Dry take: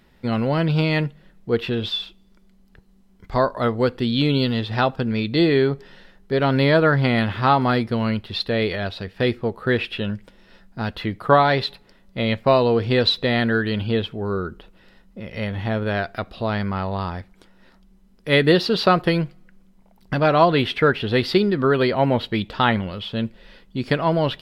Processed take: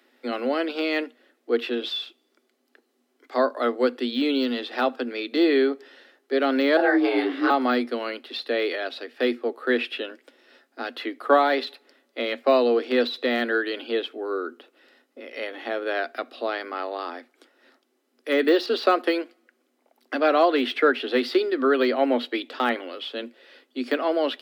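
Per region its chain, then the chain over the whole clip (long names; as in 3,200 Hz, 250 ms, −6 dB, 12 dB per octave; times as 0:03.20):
0:06.77–0:07.50: low-shelf EQ 130 Hz +9.5 dB + frequency shifter +180 Hz + micro pitch shift up and down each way 43 cents
whole clip: de-essing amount 70%; Chebyshev high-pass filter 240 Hz, order 10; notch filter 960 Hz, Q 6.9; level −1 dB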